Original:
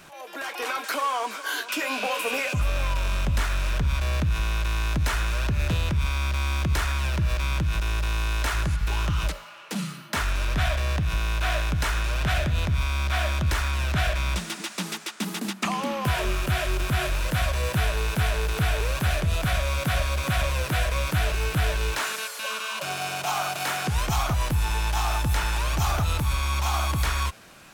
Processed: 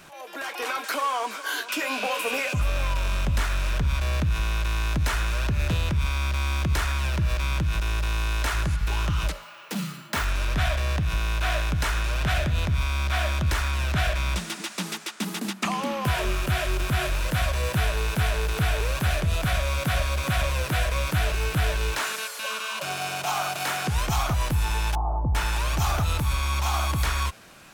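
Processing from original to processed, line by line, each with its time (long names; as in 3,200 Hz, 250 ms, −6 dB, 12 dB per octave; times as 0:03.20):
0:09.41–0:10.25: bad sample-rate conversion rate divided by 2×, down none, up hold
0:24.95–0:25.35: Butterworth low-pass 990 Hz 48 dB per octave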